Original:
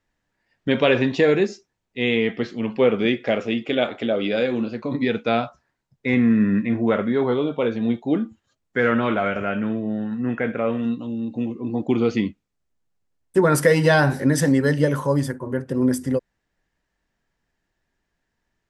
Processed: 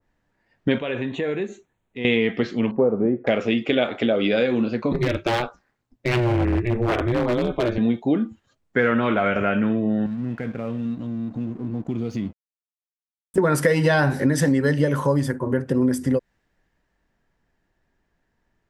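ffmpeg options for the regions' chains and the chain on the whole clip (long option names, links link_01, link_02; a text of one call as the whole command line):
ffmpeg -i in.wav -filter_complex "[0:a]asettb=1/sr,asplit=3[link_01][link_02][link_03];[link_01]atrim=end=0.784[link_04];[link_02]atrim=start=0.78:end=2.05,asetpts=PTS-STARTPTS,afade=type=in:duration=0.004:curve=qsin,afade=type=out:start_time=1.266:duration=0.004:curve=qsin,asuperstop=centerf=5100:order=4:qfactor=2,acompressor=threshold=-39dB:ratio=2:attack=3.2:release=140:knee=1:detection=peak[link_05];[link_03]atrim=start=2.046[link_06];[link_04][link_05]acrossfade=duration=0.004:curve1=hsin:curve2=qsin[link_07];[link_07][link_06]acrossfade=duration=0.004:curve1=qsin:curve2=hsin,asettb=1/sr,asplit=3[link_08][link_09][link_10];[link_08]atrim=end=2.714[link_11];[link_09]atrim=start=2.71:end=3.27,asetpts=PTS-STARTPTS,afade=type=in:duration=0.004:curve=qsin,afade=type=out:start_time=0.556:duration=0.004:curve=qsin,agate=range=-33dB:threshold=-40dB:ratio=3:release=100:detection=peak,lowpass=frequency=1000:width=0.5412,lowpass=frequency=1000:width=1.3066[link_12];[link_10]atrim=start=3.266[link_13];[link_11][link_12]acrossfade=duration=0.004:curve1=hsin:curve2=qsin[link_14];[link_14][link_13]acrossfade=duration=0.004:curve1=qsin:curve2=hsin,asettb=1/sr,asplit=3[link_15][link_16][link_17];[link_15]atrim=end=4.924[link_18];[link_16]atrim=start=4.92:end=7.78,asetpts=PTS-STARTPTS,afade=type=in:duration=0.004:curve=qsin,afade=type=out:start_time=2.856:duration=0.004:curve=qsin,highshelf=frequency=10000:gain=3,aeval=exprs='val(0)*sin(2*PI*120*n/s)':channel_layout=same,aeval=exprs='0.141*(abs(mod(val(0)/0.141+3,4)-2)-1)':channel_layout=same[link_19];[link_17]atrim=start=7.776[link_20];[link_18][link_19]acrossfade=duration=0.004:curve1=hsin:curve2=qsin[link_21];[link_21][link_20]acrossfade=duration=0.004:curve1=qsin:curve2=hsin,asettb=1/sr,asplit=3[link_22][link_23][link_24];[link_22]atrim=end=10.064[link_25];[link_23]atrim=start=10.06:end=13.38,asetpts=PTS-STARTPTS,afade=type=in:duration=0.004:curve=qsin,afade=type=out:start_time=3.316:duration=0.004:curve=qsin,bass=frequency=250:gain=12,treble=frequency=4000:gain=14,acompressor=threshold=-37dB:ratio=2.5:attack=3.2:release=140:knee=1:detection=peak,aeval=exprs='sgn(val(0))*max(abs(val(0))-0.00316,0)':channel_layout=same[link_26];[link_24]atrim=start=13.376[link_27];[link_25][link_26]acrossfade=duration=0.004:curve1=hsin:curve2=qsin[link_28];[link_28][link_27]acrossfade=duration=0.004:curve1=qsin:curve2=hsin,highshelf=frequency=2300:gain=-9.5,acompressor=threshold=-24dB:ratio=3,adynamicequalizer=threshold=0.00794:dfrequency=1600:dqfactor=0.7:tfrequency=1600:tqfactor=0.7:attack=5:release=100:ratio=0.375:range=3:mode=boostabove:tftype=highshelf,volume=6dB" out.wav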